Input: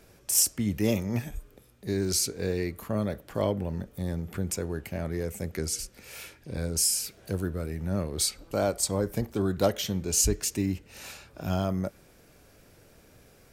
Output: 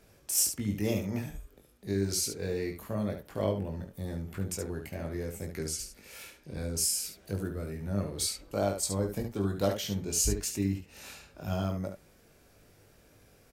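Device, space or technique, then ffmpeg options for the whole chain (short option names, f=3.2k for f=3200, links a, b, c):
slapback doubling: -filter_complex "[0:a]asplit=3[a][b][c];[b]adelay=20,volume=-5dB[d];[c]adelay=71,volume=-7dB[e];[a][d][e]amix=inputs=3:normalize=0,volume=-5.5dB"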